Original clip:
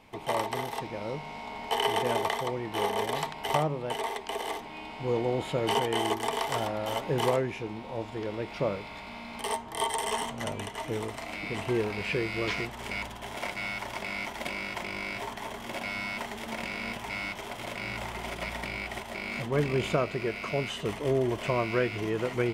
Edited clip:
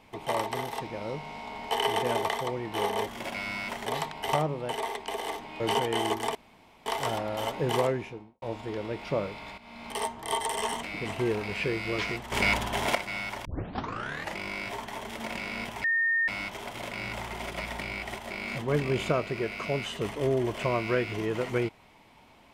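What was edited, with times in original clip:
0:04.81–0:05.60: remove
0:06.35: splice in room tone 0.51 s
0:07.40–0:07.91: fade out and dull
0:09.07–0:09.50: fade in equal-power, from −14.5 dB
0:10.32–0:11.32: remove
0:12.81–0:13.44: clip gain +10 dB
0:13.94: tape start 0.93 s
0:15.56–0:16.35: move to 0:03.07
0:17.12: insert tone 1,830 Hz −22.5 dBFS 0.44 s

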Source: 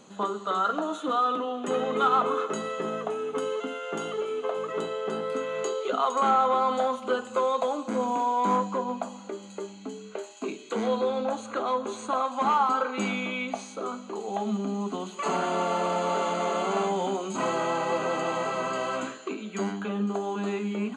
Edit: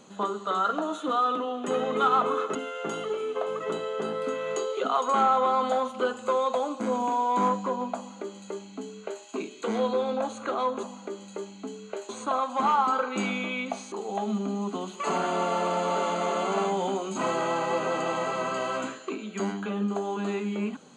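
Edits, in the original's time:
0:02.55–0:03.63: remove
0:09.05–0:10.31: duplicate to 0:11.91
0:13.74–0:14.11: remove

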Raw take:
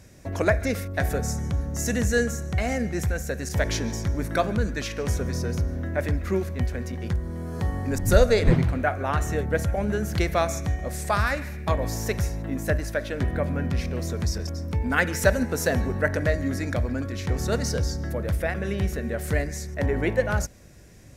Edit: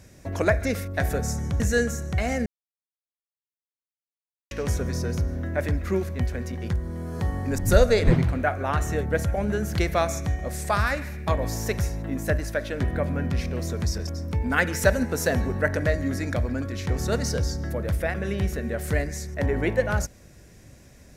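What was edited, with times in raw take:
0:01.60–0:02.00: remove
0:02.86–0:04.91: silence

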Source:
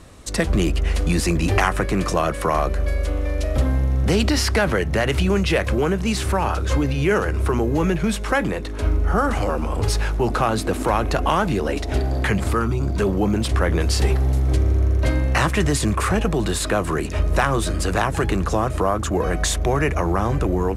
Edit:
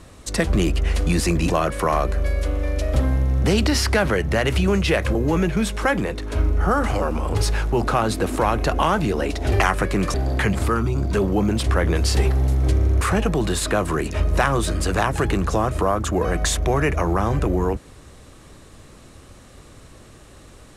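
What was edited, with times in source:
0:01.50–0:02.12: move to 0:11.99
0:05.77–0:07.62: remove
0:14.86–0:16.00: remove

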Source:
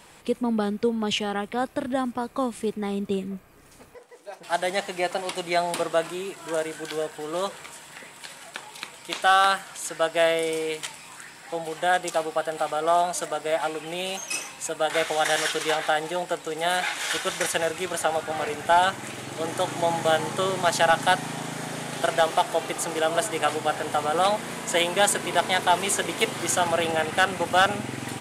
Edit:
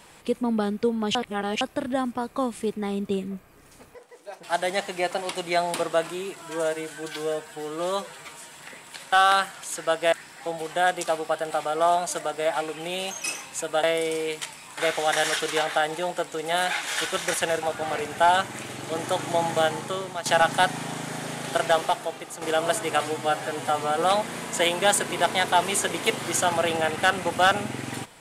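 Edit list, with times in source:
0:01.15–0:01.61: reverse
0:06.42–0:07.83: time-stretch 1.5×
0:08.42–0:09.25: remove
0:10.25–0:11.19: move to 0:14.90
0:17.75–0:18.11: remove
0:20.04–0:20.74: fade out, to −12.5 dB
0:22.28–0:22.90: fade out quadratic, to −9.5 dB
0:23.49–0:24.17: time-stretch 1.5×

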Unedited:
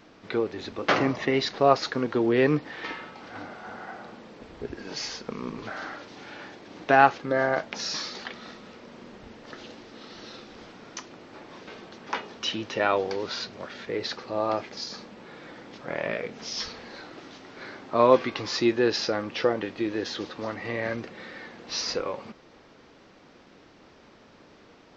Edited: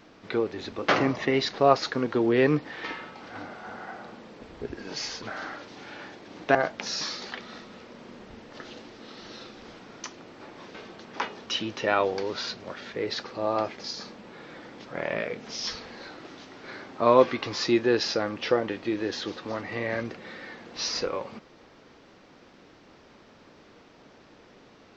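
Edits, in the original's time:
0:05.22–0:05.62: remove
0:06.95–0:07.48: remove

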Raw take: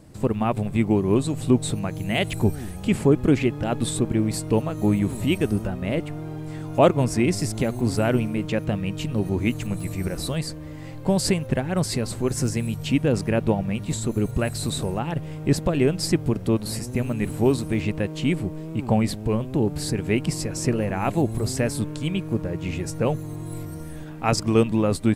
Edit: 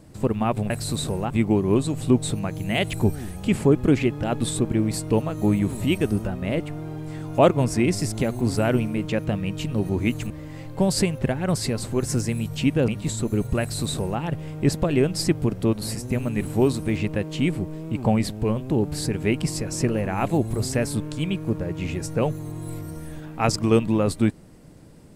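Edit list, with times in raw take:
0:09.70–0:10.58: remove
0:13.16–0:13.72: remove
0:14.44–0:15.04: duplicate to 0:00.70

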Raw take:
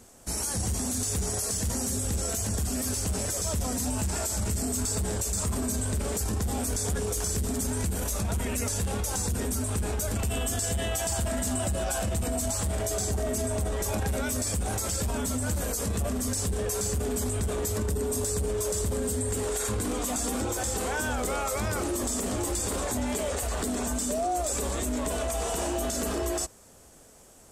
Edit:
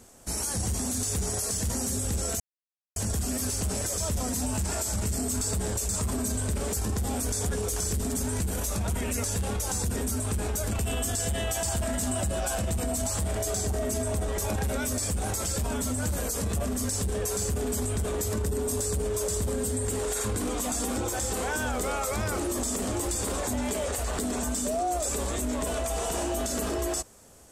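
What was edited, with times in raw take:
0:02.40: splice in silence 0.56 s

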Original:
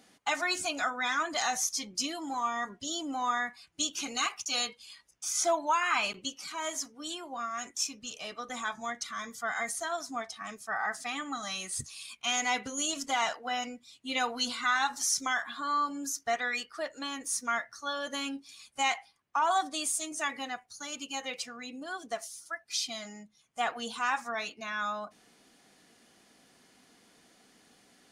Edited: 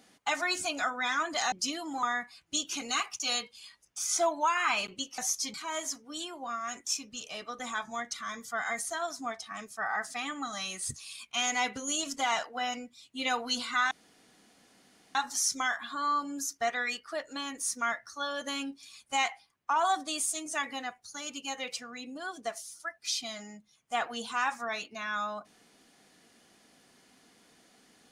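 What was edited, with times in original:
0:01.52–0:01.88: move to 0:06.44
0:02.39–0:03.29: remove
0:14.81: splice in room tone 1.24 s

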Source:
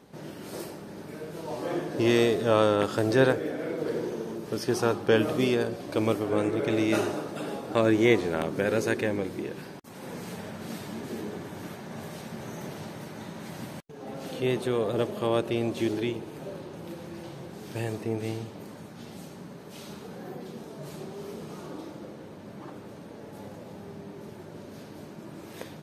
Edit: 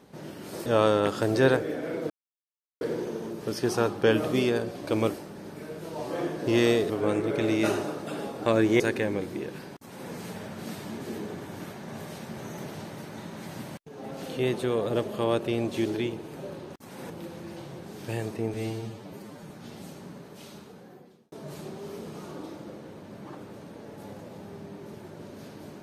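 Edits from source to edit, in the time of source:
0:00.66–0:02.42: move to 0:06.19
0:03.86: splice in silence 0.71 s
0:08.09–0:08.83: remove
0:09.78–0:10.14: duplicate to 0:16.77
0:18.21–0:18.85: time-stretch 1.5×
0:19.48–0:20.67: fade out

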